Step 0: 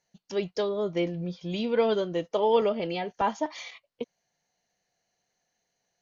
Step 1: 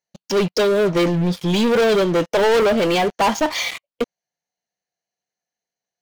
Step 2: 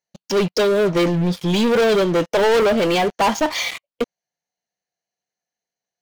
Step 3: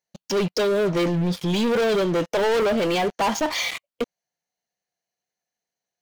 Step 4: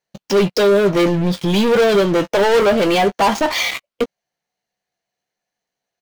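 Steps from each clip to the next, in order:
bass shelf 75 Hz -11 dB; waveshaping leveller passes 5
no audible change
peak limiter -18 dBFS, peak gain reduction 5.5 dB
median filter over 5 samples; doubling 15 ms -10 dB; trim +6.5 dB

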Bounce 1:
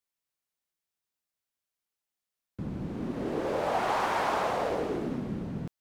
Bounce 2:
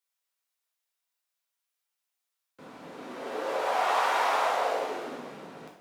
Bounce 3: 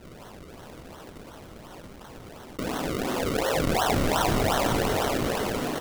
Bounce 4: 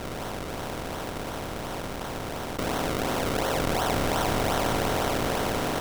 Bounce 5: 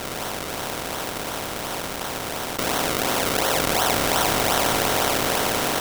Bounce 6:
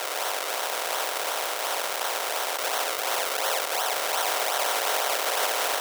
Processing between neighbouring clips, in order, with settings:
high-pass 620 Hz 12 dB/octave; two-slope reverb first 0.58 s, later 2.3 s, DRR -2 dB
decimation with a swept rate 36×, swing 100% 2.8 Hz; on a send: delay 501 ms -7.5 dB; on the sum: level flattener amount 70%
spectral levelling over time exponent 0.4; trim -6 dB
tilt EQ +2 dB/octave; trim +5 dB
high-pass 480 Hz 24 dB/octave; peak limiter -12 dBFS, peak gain reduction 10.5 dB; trim +2 dB

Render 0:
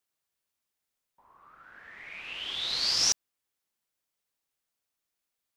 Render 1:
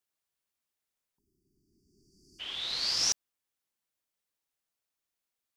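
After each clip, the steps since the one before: spectral selection erased 1.18–2.40 s, 420–4500 Hz; trim -3 dB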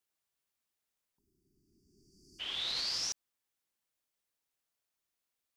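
peak limiter -26.5 dBFS, peak gain reduction 11 dB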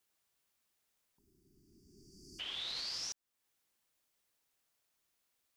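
compression 2:1, threshold -54 dBFS, peak gain reduction 11.5 dB; trim +6 dB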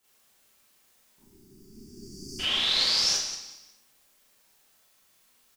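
frequency-shifting echo 184 ms, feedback 30%, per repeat -41 Hz, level -11 dB; Schroeder reverb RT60 0.56 s, combs from 29 ms, DRR -9.5 dB; trim +6.5 dB

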